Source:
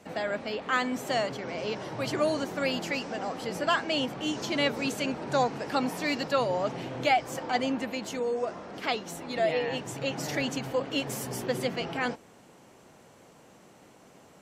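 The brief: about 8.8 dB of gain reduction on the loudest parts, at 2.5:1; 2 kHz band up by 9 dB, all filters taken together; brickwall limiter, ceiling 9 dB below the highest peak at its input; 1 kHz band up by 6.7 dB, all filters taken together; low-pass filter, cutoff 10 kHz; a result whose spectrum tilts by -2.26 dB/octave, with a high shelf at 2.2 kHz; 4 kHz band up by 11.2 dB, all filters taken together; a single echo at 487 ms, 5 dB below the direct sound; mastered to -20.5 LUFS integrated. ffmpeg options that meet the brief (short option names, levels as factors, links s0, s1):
-af "lowpass=10000,equalizer=f=1000:t=o:g=6.5,equalizer=f=2000:t=o:g=3,highshelf=f=2200:g=9,equalizer=f=4000:t=o:g=5,acompressor=threshold=0.0562:ratio=2.5,alimiter=limit=0.119:level=0:latency=1,aecho=1:1:487:0.562,volume=2.37"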